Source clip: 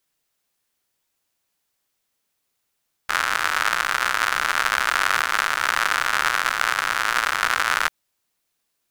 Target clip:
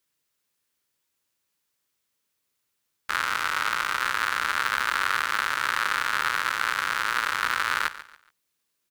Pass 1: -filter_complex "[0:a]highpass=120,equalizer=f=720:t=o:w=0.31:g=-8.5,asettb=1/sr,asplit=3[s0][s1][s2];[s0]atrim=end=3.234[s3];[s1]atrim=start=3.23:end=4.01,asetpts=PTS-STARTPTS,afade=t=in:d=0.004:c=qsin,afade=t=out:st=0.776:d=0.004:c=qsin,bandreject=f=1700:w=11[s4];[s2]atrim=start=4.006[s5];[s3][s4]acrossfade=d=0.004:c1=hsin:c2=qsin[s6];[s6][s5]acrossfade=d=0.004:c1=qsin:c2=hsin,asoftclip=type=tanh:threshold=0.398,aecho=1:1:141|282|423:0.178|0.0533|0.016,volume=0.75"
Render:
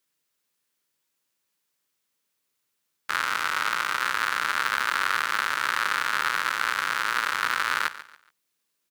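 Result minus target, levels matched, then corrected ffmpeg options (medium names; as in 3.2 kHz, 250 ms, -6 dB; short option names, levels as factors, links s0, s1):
125 Hz band -2.5 dB
-filter_complex "[0:a]highpass=47,equalizer=f=720:t=o:w=0.31:g=-8.5,asettb=1/sr,asplit=3[s0][s1][s2];[s0]atrim=end=3.234[s3];[s1]atrim=start=3.23:end=4.01,asetpts=PTS-STARTPTS,afade=t=in:d=0.004:c=qsin,afade=t=out:st=0.776:d=0.004:c=qsin,bandreject=f=1700:w=11[s4];[s2]atrim=start=4.006[s5];[s3][s4]acrossfade=d=0.004:c1=hsin:c2=qsin[s6];[s6][s5]acrossfade=d=0.004:c1=qsin:c2=hsin,asoftclip=type=tanh:threshold=0.398,aecho=1:1:141|282|423:0.178|0.0533|0.016,volume=0.75"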